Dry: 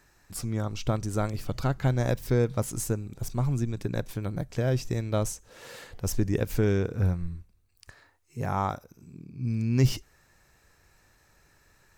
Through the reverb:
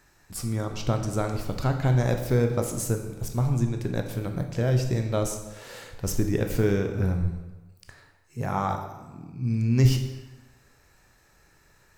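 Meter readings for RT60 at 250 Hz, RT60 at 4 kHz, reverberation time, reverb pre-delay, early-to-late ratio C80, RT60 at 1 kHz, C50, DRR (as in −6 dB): 1.2 s, 0.90 s, 1.2 s, 14 ms, 9.5 dB, 1.2 s, 7.0 dB, 4.5 dB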